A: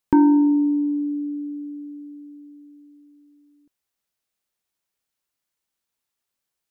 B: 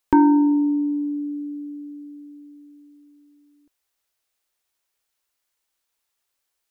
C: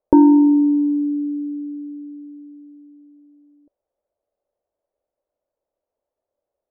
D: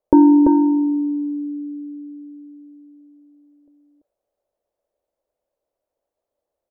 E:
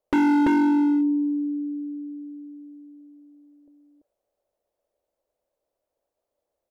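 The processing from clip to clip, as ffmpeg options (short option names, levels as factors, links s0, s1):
-af "equalizer=f=170:t=o:w=1.3:g=-13,volume=1.78"
-af "lowpass=f=580:t=q:w=5.3,volume=1.26"
-af "aecho=1:1:338:0.668"
-af "asoftclip=type=hard:threshold=0.133"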